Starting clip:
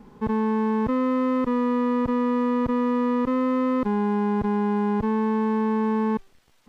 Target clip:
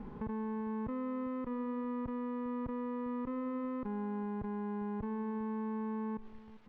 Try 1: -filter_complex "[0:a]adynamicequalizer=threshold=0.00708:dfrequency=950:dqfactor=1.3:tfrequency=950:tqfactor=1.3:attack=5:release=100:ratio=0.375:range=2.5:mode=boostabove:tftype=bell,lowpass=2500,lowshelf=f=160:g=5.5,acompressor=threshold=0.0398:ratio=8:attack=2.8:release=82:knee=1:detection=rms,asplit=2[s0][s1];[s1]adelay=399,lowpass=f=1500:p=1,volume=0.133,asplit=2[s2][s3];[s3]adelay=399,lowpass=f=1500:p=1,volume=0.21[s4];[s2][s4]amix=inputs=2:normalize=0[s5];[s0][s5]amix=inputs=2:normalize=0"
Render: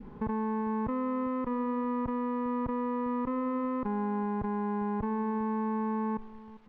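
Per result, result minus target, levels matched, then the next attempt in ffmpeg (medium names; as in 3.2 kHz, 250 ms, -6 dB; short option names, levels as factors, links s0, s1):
compression: peak gain reduction -5.5 dB; 1 kHz band +3.5 dB
-filter_complex "[0:a]adynamicequalizer=threshold=0.00708:dfrequency=950:dqfactor=1.3:tfrequency=950:tqfactor=1.3:attack=5:release=100:ratio=0.375:range=2.5:mode=boostabove:tftype=bell,lowpass=2500,lowshelf=f=160:g=5.5,acompressor=threshold=0.0158:ratio=8:attack=2.8:release=82:knee=1:detection=rms,asplit=2[s0][s1];[s1]adelay=399,lowpass=f=1500:p=1,volume=0.133,asplit=2[s2][s3];[s3]adelay=399,lowpass=f=1500:p=1,volume=0.21[s4];[s2][s4]amix=inputs=2:normalize=0[s5];[s0][s5]amix=inputs=2:normalize=0"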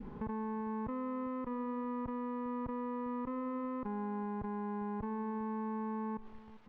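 1 kHz band +3.5 dB
-filter_complex "[0:a]lowpass=2500,lowshelf=f=160:g=5.5,acompressor=threshold=0.0158:ratio=8:attack=2.8:release=82:knee=1:detection=rms,asplit=2[s0][s1];[s1]adelay=399,lowpass=f=1500:p=1,volume=0.133,asplit=2[s2][s3];[s3]adelay=399,lowpass=f=1500:p=1,volume=0.21[s4];[s2][s4]amix=inputs=2:normalize=0[s5];[s0][s5]amix=inputs=2:normalize=0"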